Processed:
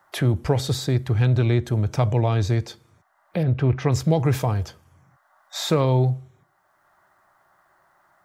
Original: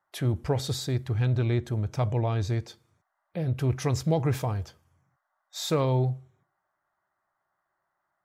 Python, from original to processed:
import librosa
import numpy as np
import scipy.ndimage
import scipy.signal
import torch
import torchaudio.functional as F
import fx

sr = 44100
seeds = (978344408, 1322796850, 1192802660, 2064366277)

y = fx.lowpass(x, sr, hz=2400.0, slope=12, at=(3.43, 3.92))
y = fx.band_squash(y, sr, depth_pct=40)
y = F.gain(torch.from_numpy(y), 6.0).numpy()